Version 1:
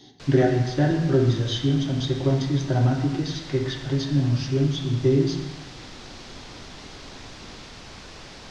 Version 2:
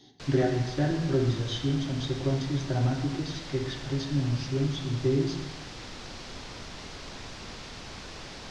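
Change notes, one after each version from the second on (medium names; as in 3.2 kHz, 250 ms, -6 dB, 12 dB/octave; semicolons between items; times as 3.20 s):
speech -6.0 dB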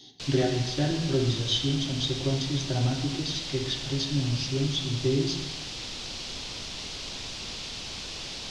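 master: add resonant high shelf 2.3 kHz +7.5 dB, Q 1.5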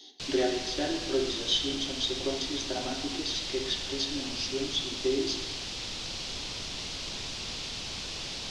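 speech: add high-pass 300 Hz 24 dB/octave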